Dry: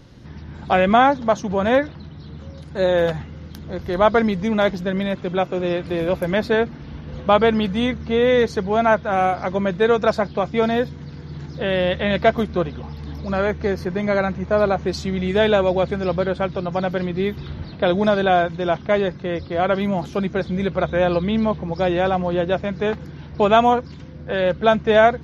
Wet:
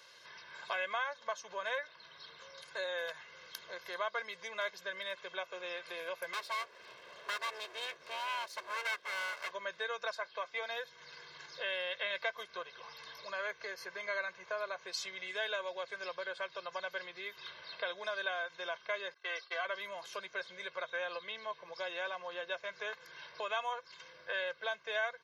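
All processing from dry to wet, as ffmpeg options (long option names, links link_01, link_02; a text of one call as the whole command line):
ffmpeg -i in.wav -filter_complex "[0:a]asettb=1/sr,asplit=3[link_01][link_02][link_03];[link_01]atrim=end=6.334[link_04];[link_02]atrim=start=6.33:end=9.51,asetpts=PTS-STARTPTS,afade=type=in:duration=0.004:curve=qsin,afade=type=out:start_time=3.176:duration=0.004:curve=qsin,lowshelf=frequency=230:gain=9,aeval=exprs='abs(val(0))':channel_layout=same[link_05];[link_03]atrim=start=9.506[link_06];[link_04][link_05]acrossfade=duration=0.004:curve1=hsin:curve2=qsin[link_07];[link_07][link_06]acrossfade=duration=0.004:curve1=qsin:curve2=hsin,asettb=1/sr,asplit=3[link_08][link_09][link_10];[link_08]atrim=end=10.154[link_11];[link_09]atrim=start=10.15:end=10.7,asetpts=PTS-STARTPTS,afade=type=in:duration=0.004:curve=qsin,afade=type=out:start_time=0.546:duration=0.004:curve=qsin,highpass=frequency=360:poles=1,highshelf=frequency=5400:gain=-7[link_12];[link_10]atrim=start=10.696[link_13];[link_11][link_12]acrossfade=duration=0.004:curve1=hsin:curve2=qsin[link_14];[link_14][link_13]acrossfade=duration=0.004:curve1=qsin:curve2=hsin,asettb=1/sr,asplit=3[link_15][link_16][link_17];[link_15]atrim=end=19.144[link_18];[link_16]atrim=start=19.14:end=19.65,asetpts=PTS-STARTPTS,afade=type=in:duration=0.004:curve=qsin,afade=type=out:start_time=0.506:duration=0.004:curve=qsin,agate=range=-33dB:threshold=-28dB:ratio=3:release=100:detection=peak,highpass=600,aecho=1:1:2.6:0.73,atrim=end_sample=22491[link_19];[link_17]atrim=start=19.646[link_20];[link_18][link_19]acrossfade=duration=0.004:curve1=hsin:curve2=qsin[link_21];[link_21][link_20]acrossfade=duration=0.004:curve1=qsin:curve2=hsin,acompressor=threshold=-30dB:ratio=3,highpass=1200,aecho=1:1:1.9:0.83,volume=-2dB" out.wav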